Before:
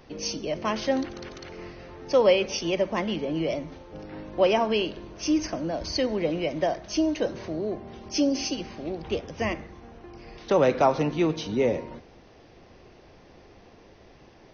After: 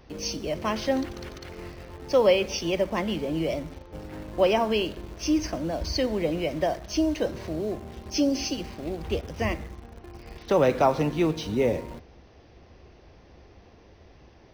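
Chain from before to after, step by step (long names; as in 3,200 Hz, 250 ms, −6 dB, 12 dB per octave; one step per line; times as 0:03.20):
parametric band 64 Hz +11 dB 1.1 octaves
in parallel at −11.5 dB: bit reduction 6 bits
on the sum: level −2.5 dB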